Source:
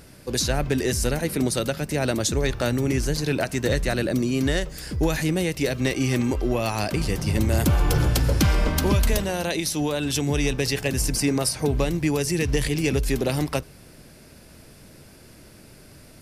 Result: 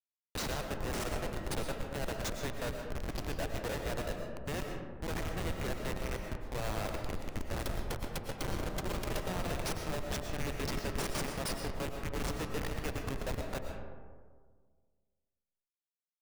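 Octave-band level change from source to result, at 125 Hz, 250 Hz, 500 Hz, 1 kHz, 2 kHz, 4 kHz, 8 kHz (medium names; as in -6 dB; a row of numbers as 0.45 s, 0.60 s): -16.0 dB, -17.0 dB, -13.5 dB, -8.5 dB, -12.0 dB, -13.5 dB, -15.5 dB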